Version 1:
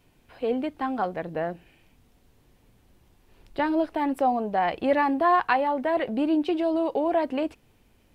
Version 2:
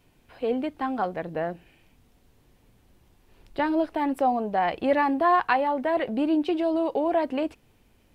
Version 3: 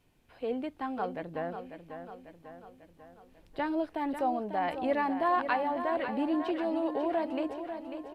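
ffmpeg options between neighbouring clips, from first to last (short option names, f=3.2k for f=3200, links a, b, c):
-af anull
-filter_complex "[0:a]asplit=2[a][b];[b]aecho=0:1:545|1090|1635|2180|2725|3270:0.355|0.195|0.107|0.059|0.0325|0.0179[c];[a][c]amix=inputs=2:normalize=0,aresample=32000,aresample=44100,volume=-7dB"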